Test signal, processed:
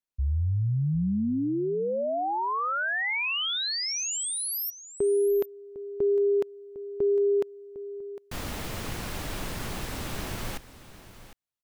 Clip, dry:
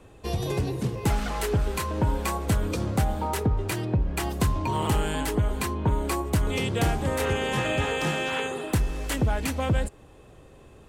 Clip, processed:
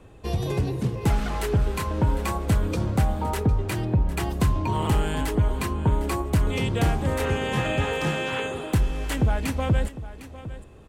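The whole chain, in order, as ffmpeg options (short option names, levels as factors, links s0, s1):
-af "bass=f=250:g=3,treble=f=4000:g=-3,aecho=1:1:755:0.178"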